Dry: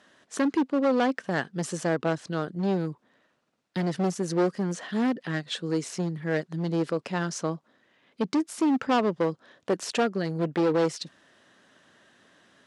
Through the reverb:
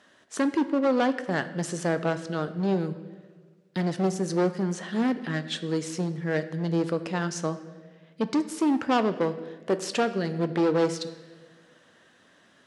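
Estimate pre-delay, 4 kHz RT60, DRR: 11 ms, 1.2 s, 10.5 dB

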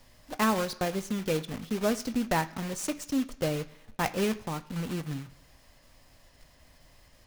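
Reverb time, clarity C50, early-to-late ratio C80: 1.0 s, 17.0 dB, 19.5 dB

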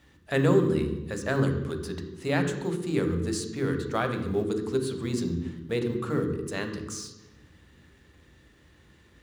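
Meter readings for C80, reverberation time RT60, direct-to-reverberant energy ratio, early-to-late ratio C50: 9.0 dB, 1.1 s, 4.5 dB, 7.0 dB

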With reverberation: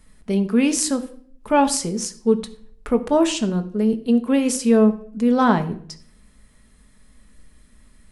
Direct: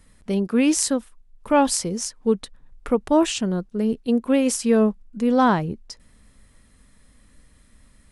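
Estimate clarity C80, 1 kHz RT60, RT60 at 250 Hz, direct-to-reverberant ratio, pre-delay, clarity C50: 18.0 dB, 0.50 s, 0.70 s, 7.0 dB, 5 ms, 15.0 dB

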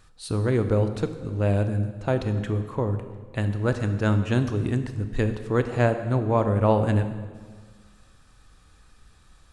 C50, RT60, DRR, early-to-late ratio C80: 9.5 dB, 1.6 s, 8.5 dB, 11.0 dB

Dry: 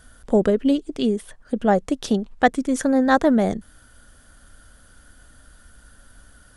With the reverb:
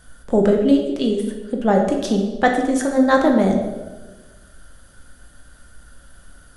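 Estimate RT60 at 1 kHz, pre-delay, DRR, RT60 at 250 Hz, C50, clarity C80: 1.1 s, 6 ms, 1.5 dB, 1.4 s, 5.0 dB, 7.0 dB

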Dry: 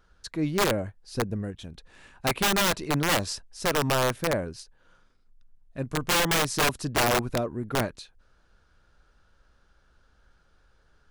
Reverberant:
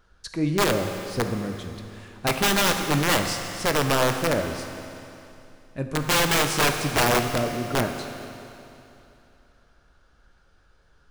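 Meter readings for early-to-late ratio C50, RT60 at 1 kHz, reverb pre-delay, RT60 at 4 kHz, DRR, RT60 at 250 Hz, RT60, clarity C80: 6.0 dB, 2.9 s, 12 ms, 2.8 s, 5.0 dB, 2.9 s, 2.9 s, 7.0 dB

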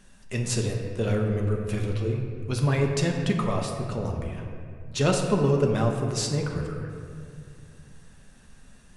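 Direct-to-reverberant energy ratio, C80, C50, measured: 1.0 dB, 5.0 dB, 4.0 dB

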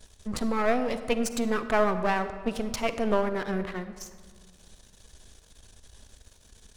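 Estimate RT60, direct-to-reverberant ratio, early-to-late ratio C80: 1.7 s, 10.5 dB, 12.0 dB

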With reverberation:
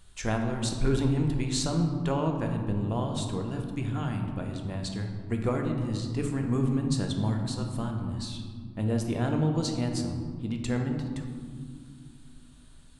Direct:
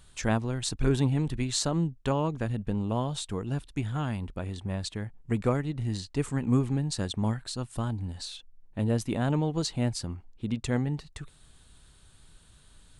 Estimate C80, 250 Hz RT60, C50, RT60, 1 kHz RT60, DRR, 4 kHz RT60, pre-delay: 6.5 dB, 3.3 s, 5.0 dB, 2.1 s, 1.8 s, 2.5 dB, 0.90 s, 3 ms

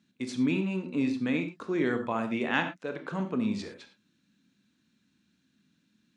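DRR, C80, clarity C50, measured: 6.0 dB, 13.0 dB, 9.0 dB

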